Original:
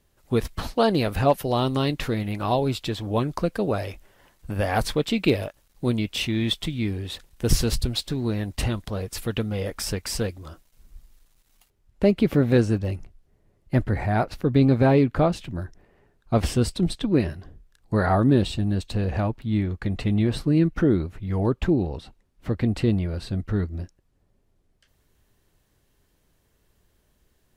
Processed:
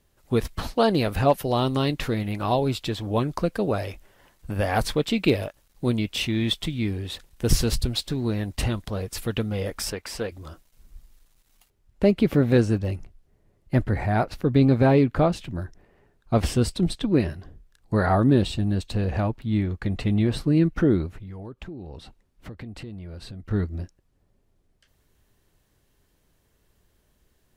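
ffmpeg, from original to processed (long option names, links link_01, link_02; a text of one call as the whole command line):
ffmpeg -i in.wav -filter_complex "[0:a]asettb=1/sr,asplit=3[link_01][link_02][link_03];[link_01]atrim=end=9.904[link_04];[link_02]atrim=start=9.9:end=10.32,asetpts=PTS-STARTPTS,afade=type=in:duration=0.004:curve=qsin,afade=type=out:start_time=0.416:duration=0.004:curve=qsin,bass=frequency=250:gain=-10,treble=frequency=4000:gain=-8[link_05];[link_03]atrim=start=10.316[link_06];[link_04][link_05]acrossfade=duration=0.004:curve1=hsin:curve2=qsin[link_07];[link_07][link_06]acrossfade=duration=0.004:curve1=qsin:curve2=hsin,asettb=1/sr,asplit=3[link_08][link_09][link_10];[link_08]atrim=end=21.174[link_11];[link_09]atrim=start=21.17:end=23.51,asetpts=PTS-STARTPTS,afade=type=in:duration=0.004:curve=qsin,afade=type=out:start_time=2.336:duration=0.004:curve=qsin,acompressor=threshold=-36dB:ratio=5:attack=3.2:release=140:knee=1:detection=peak[link_12];[link_10]atrim=start=23.506[link_13];[link_11][link_12]acrossfade=duration=0.004:curve1=hsin:curve2=qsin[link_14];[link_14][link_13]acrossfade=duration=0.004:curve1=qsin:curve2=hsin" out.wav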